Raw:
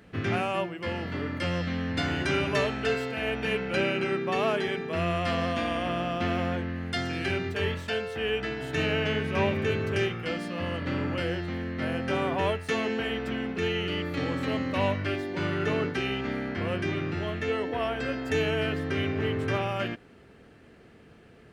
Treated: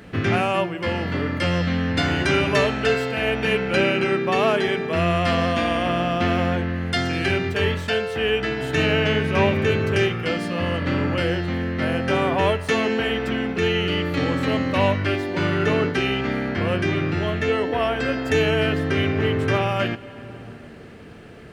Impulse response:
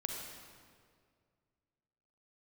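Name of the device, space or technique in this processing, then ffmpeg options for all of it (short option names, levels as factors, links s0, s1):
ducked reverb: -filter_complex "[0:a]asplit=3[s0][s1][s2];[1:a]atrim=start_sample=2205[s3];[s1][s3]afir=irnorm=-1:irlink=0[s4];[s2]apad=whole_len=949109[s5];[s4][s5]sidechaincompress=threshold=0.01:ratio=8:attack=16:release=520,volume=0.708[s6];[s0][s6]amix=inputs=2:normalize=0,volume=2.11"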